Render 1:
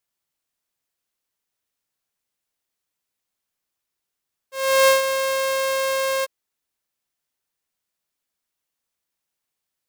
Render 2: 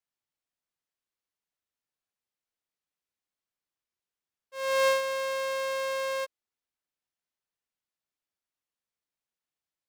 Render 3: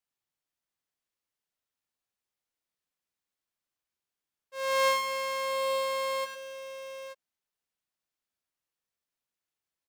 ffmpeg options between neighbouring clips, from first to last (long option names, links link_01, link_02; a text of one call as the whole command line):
ffmpeg -i in.wav -af "highshelf=frequency=7700:gain=-10.5,volume=-8dB" out.wav
ffmpeg -i in.wav -af "aecho=1:1:100|292|830|882:0.422|0.1|0.119|0.251" out.wav